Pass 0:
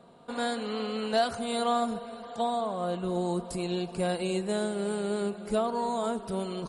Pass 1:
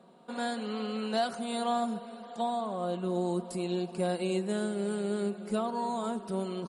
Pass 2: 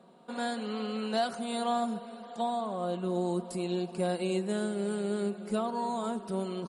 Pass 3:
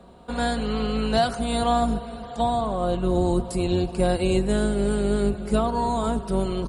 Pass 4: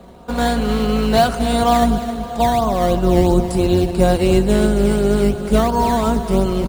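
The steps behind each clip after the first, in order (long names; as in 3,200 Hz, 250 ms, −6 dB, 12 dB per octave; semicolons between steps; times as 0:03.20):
low shelf with overshoot 140 Hz −12.5 dB, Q 1.5; comb filter 5.4 ms, depth 33%; level −4 dB
no processing that can be heard
sub-octave generator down 2 octaves, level −1 dB; level +8 dB
in parallel at −6 dB: sample-and-hold swept by an LFO 12×, swing 100% 2.9 Hz; on the sum: repeating echo 266 ms, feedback 34%, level −12 dB; level +4 dB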